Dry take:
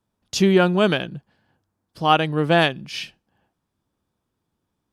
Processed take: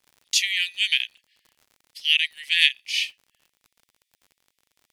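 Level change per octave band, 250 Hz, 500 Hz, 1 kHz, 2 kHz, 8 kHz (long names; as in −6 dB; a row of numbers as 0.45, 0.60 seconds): below −40 dB, below −40 dB, below −40 dB, +2.0 dB, +6.0 dB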